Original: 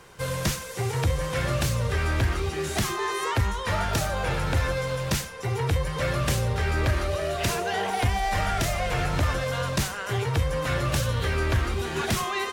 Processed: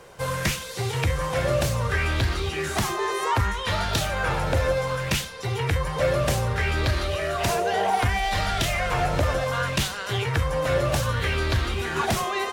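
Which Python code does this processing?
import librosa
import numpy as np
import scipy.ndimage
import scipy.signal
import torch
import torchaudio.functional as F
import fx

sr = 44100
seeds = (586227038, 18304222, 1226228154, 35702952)

y = fx.bell_lfo(x, sr, hz=0.65, low_hz=540.0, high_hz=4200.0, db=9)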